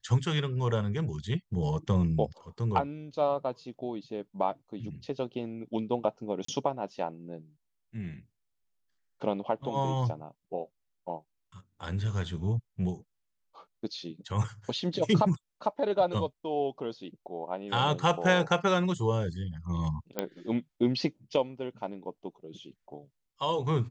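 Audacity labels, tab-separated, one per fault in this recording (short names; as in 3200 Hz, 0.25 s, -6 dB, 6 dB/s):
6.450000	6.480000	gap 34 ms
20.190000	20.190000	pop -15 dBFS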